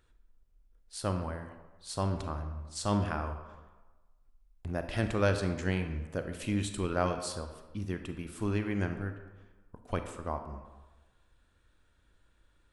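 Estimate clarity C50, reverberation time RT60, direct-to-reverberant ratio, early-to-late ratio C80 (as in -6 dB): 8.5 dB, 1.2 s, 7.0 dB, 10.0 dB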